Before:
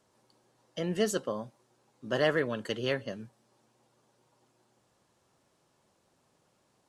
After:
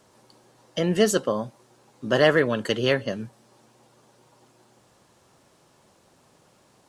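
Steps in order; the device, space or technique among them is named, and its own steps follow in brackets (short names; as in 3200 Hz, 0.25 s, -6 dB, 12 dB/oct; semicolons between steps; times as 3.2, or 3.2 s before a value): parallel compression (in parallel at -6 dB: compressor, threshold -42 dBFS, peak gain reduction 18.5 dB); on the sum: gain +8 dB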